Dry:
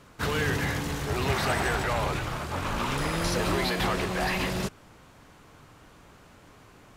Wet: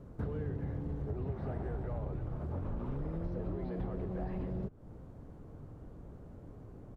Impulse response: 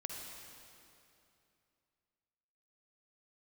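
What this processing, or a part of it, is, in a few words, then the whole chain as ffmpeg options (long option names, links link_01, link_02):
ASMR close-microphone chain: -filter_complex "[0:a]acrossover=split=3900[link_01][link_02];[link_02]acompressor=threshold=-54dB:ratio=4:attack=1:release=60[link_03];[link_01][link_03]amix=inputs=2:normalize=0,firequalizer=gain_entry='entry(470,0);entry(1000,-12);entry(2500,-24)':delay=0.05:min_phase=1,lowshelf=frequency=160:gain=8,acompressor=threshold=-36dB:ratio=6,highshelf=frequency=8300:gain=5.5,volume=1dB"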